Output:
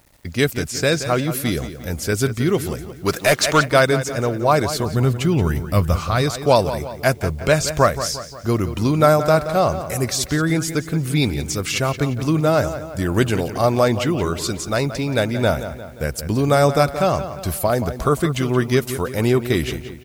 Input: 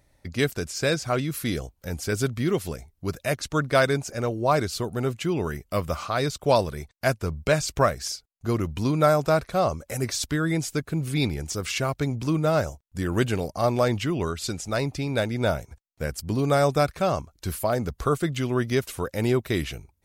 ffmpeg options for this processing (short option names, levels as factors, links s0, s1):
-filter_complex "[0:a]asplit=2[s0][s1];[s1]adelay=176,lowpass=f=4900:p=1,volume=0.266,asplit=2[s2][s3];[s3]adelay=176,lowpass=f=4900:p=1,volume=0.51,asplit=2[s4][s5];[s5]adelay=176,lowpass=f=4900:p=1,volume=0.51,asplit=2[s6][s7];[s7]adelay=176,lowpass=f=4900:p=1,volume=0.51,asplit=2[s8][s9];[s9]adelay=176,lowpass=f=4900:p=1,volume=0.51[s10];[s0][s2][s4][s6][s8][s10]amix=inputs=6:normalize=0,acrusher=bits=9:mix=0:aa=0.000001,highshelf=f=12000:g=5,asplit=3[s11][s12][s13];[s11]afade=t=out:st=3.05:d=0.02[s14];[s12]asplit=2[s15][s16];[s16]highpass=f=720:p=1,volume=7.94,asoftclip=type=tanh:threshold=0.299[s17];[s15][s17]amix=inputs=2:normalize=0,lowpass=f=7300:p=1,volume=0.501,afade=t=in:st=3.05:d=0.02,afade=t=out:st=3.64:d=0.02[s18];[s13]afade=t=in:st=3.64:d=0.02[s19];[s14][s18][s19]amix=inputs=3:normalize=0,asplit=3[s20][s21][s22];[s20]afade=t=out:st=4.84:d=0.02[s23];[s21]asubboost=boost=2.5:cutoff=220,afade=t=in:st=4.84:d=0.02,afade=t=out:st=6.21:d=0.02[s24];[s22]afade=t=in:st=6.21:d=0.02[s25];[s23][s24][s25]amix=inputs=3:normalize=0,volume=1.88"